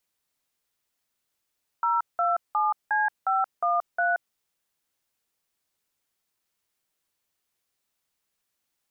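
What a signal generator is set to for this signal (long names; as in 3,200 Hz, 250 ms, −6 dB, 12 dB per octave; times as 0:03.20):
touch tones "027C513", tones 177 ms, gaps 182 ms, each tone −23.5 dBFS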